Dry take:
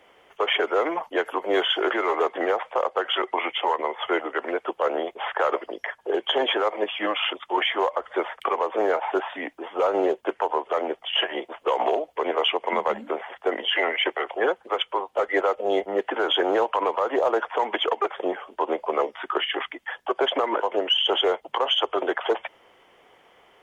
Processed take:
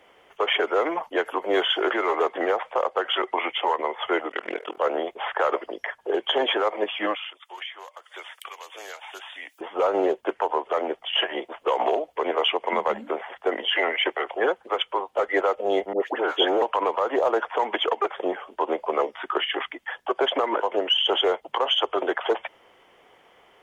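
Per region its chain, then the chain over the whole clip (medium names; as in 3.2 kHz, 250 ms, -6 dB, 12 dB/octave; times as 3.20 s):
4.29–4.78 s: resonant high shelf 1.9 kHz +7.5 dB, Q 1.5 + de-hum 75.78 Hz, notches 30 + AM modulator 41 Hz, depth 100%
7.15–9.61 s: high-pass 94 Hz + differentiator + three bands compressed up and down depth 100%
15.93–16.62 s: high-pass 200 Hz 24 dB/octave + phase dispersion highs, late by 91 ms, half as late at 1.2 kHz
whole clip: none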